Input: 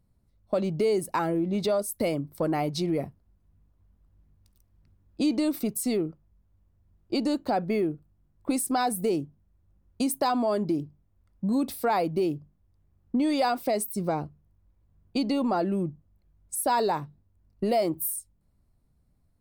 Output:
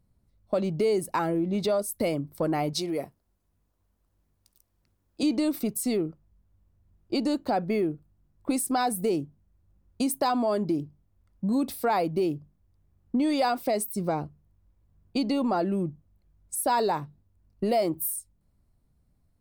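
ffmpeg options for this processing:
ffmpeg -i in.wav -filter_complex "[0:a]asettb=1/sr,asplit=3[link_01][link_02][link_03];[link_01]atrim=end=2.734[link_04];[link_02]atrim=start=2.73:end=5.23,asetpts=PTS-STARTPTS,afade=type=in:duration=0.004:curve=qsin,afade=type=out:start_time=2.496:duration=0.004:curve=qsin,bass=frequency=250:gain=-11,treble=frequency=4000:gain=6[link_05];[link_03]atrim=start=5.226[link_06];[link_04][link_05]acrossfade=duration=0.004:curve1=hsin:curve2=qsin[link_07];[link_07][link_06]acrossfade=duration=0.004:curve1=qsin:curve2=hsin" out.wav

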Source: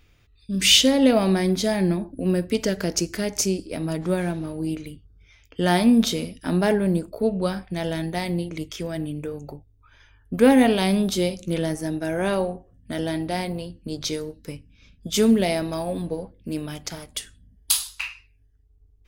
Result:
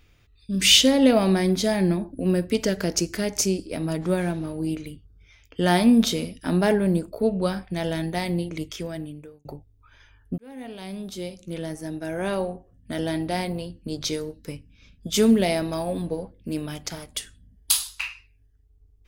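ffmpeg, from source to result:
ffmpeg -i in.wav -filter_complex "[0:a]asplit=3[link_01][link_02][link_03];[link_01]atrim=end=9.45,asetpts=PTS-STARTPTS,afade=type=out:start_time=8.69:duration=0.76[link_04];[link_02]atrim=start=9.45:end=10.38,asetpts=PTS-STARTPTS,afade=type=in:duration=0.004:curve=hsin,afade=type=out:start_time=0.926:duration=0.004:curve=hsin[link_05];[link_03]atrim=start=10.38,asetpts=PTS-STARTPTS,afade=type=in:duration=2.79[link_06];[link_04][link_05][link_06]concat=n=3:v=0:a=1" out.wav

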